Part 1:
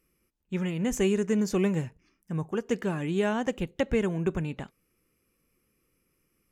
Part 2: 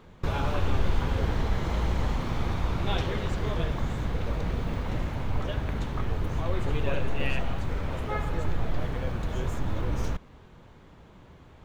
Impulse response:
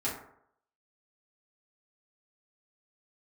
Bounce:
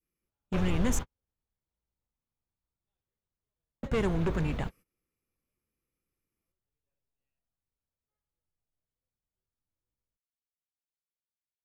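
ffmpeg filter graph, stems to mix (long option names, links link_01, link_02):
-filter_complex "[0:a]agate=range=-19dB:threshold=-58dB:ratio=16:detection=peak,adynamicequalizer=threshold=0.0112:dfrequency=1100:dqfactor=0.76:tfrequency=1100:tqfactor=0.76:attack=5:release=100:ratio=0.375:range=2:mode=boostabove:tftype=bell,asoftclip=type=tanh:threshold=-27dB,volume=2.5dB,asplit=3[link_01][link_02][link_03];[link_01]atrim=end=0.99,asetpts=PTS-STARTPTS,afade=type=out:start_time=0.986:duration=0.004:curve=hsin[link_04];[link_02]atrim=start=0.99:end=3.83,asetpts=PTS-STARTPTS,volume=0[link_05];[link_03]atrim=start=3.83,asetpts=PTS-STARTPTS,afade=type=in:duration=0.004:curve=hsin[link_06];[link_04][link_05][link_06]concat=n=3:v=0:a=1,asplit=2[link_07][link_08];[1:a]volume=-6dB[link_09];[link_08]apad=whole_len=513623[link_10];[link_09][link_10]sidechaingate=range=-59dB:threshold=-38dB:ratio=16:detection=peak[link_11];[link_07][link_11]amix=inputs=2:normalize=0"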